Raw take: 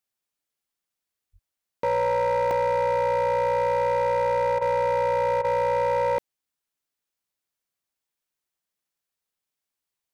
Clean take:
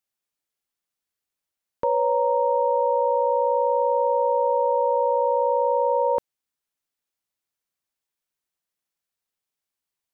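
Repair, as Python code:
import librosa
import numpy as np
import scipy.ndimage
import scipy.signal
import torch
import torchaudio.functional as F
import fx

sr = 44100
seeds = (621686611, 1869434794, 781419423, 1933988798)

y = fx.fix_declip(x, sr, threshold_db=-19.5)
y = fx.highpass(y, sr, hz=140.0, slope=24, at=(1.32, 1.44), fade=0.02)
y = fx.fix_interpolate(y, sr, at_s=(2.51,), length_ms=1.6)
y = fx.fix_interpolate(y, sr, at_s=(4.59, 5.42), length_ms=22.0)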